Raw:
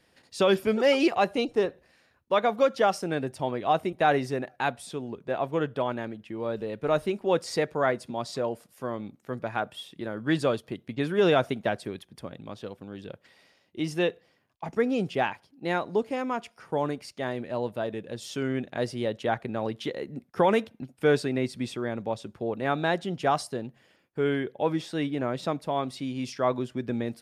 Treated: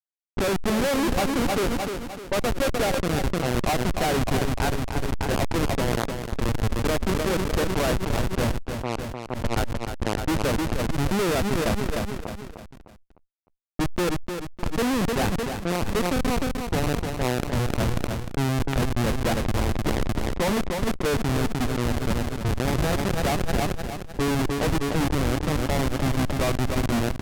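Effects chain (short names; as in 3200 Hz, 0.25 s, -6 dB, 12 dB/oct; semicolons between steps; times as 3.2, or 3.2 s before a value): Schroeder reverb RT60 2.5 s, combs from 26 ms, DRR 15.5 dB; dynamic EQ 220 Hz, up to +5 dB, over -40 dBFS, Q 1.5; in parallel at -1 dB: compressor 16:1, threshold -34 dBFS, peak gain reduction 19 dB; on the sum: Schmitt trigger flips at -23 dBFS; low-pass opened by the level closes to 650 Hz, open at -25 dBFS; on a send: feedback echo 0.304 s, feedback 34%, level -10 dB; on the sum: sustainer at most 27 dB/s; gain +3 dB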